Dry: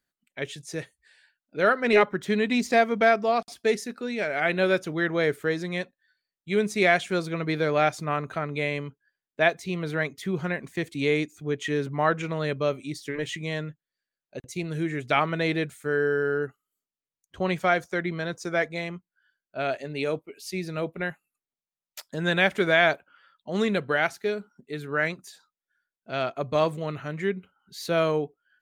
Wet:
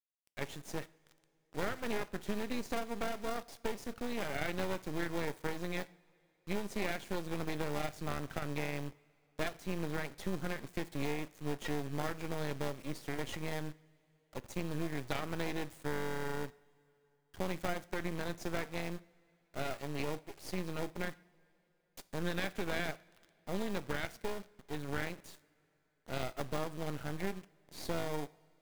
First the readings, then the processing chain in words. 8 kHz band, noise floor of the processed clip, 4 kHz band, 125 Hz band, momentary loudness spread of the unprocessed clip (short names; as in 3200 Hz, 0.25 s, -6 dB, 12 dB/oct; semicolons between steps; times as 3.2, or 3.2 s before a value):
-6.0 dB, -75 dBFS, -11.0 dB, -9.0 dB, 15 LU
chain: in parallel at -4 dB: sample-rate reducer 1400 Hz, jitter 0%; on the sum: compressor 6:1, threshold -25 dBFS, peak gain reduction 12.5 dB; half-wave rectifier; requantised 8-bit, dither none; two-slope reverb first 0.46 s, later 3.4 s, from -19 dB, DRR 15.5 dB; gain -5.5 dB